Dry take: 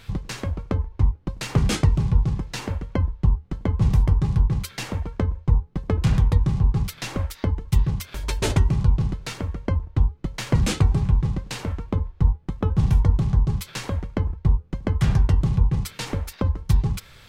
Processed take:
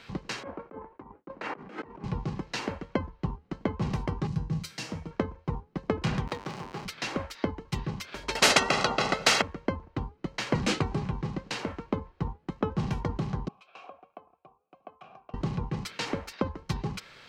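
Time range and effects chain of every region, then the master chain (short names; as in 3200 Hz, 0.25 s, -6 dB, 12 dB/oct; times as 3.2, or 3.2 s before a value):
0.43–2.04 expander -41 dBFS + three-band isolator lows -18 dB, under 210 Hz, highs -22 dB, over 2100 Hz + negative-ratio compressor -39 dBFS
4.27–5.11 HPF 44 Hz + tone controls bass +11 dB, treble +9 dB + resonator 160 Hz, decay 0.33 s, mix 70%
6.27–6.85 zero-crossing step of -29 dBFS + HPF 540 Hz 6 dB/oct
8.35–9.42 comb 1.5 ms, depth 77% + spectral compressor 4:1
13.48–15.34 notch 4500 Hz, Q 14 + compressor 2:1, threshold -27 dBFS + vowel filter a
whole clip: three-band isolator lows -20 dB, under 180 Hz, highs -17 dB, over 6300 Hz; notch 3500 Hz, Q 15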